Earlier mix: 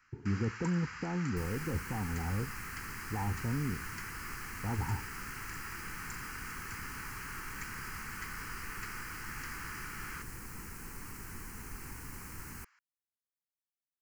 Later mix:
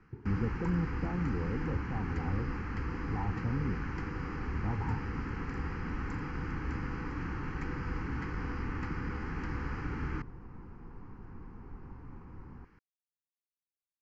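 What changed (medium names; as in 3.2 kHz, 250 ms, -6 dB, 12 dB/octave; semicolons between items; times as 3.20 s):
first sound: remove high-pass 1.2 kHz 24 dB/octave; second sound: add low-pass 1 kHz 24 dB/octave; master: add distance through air 190 m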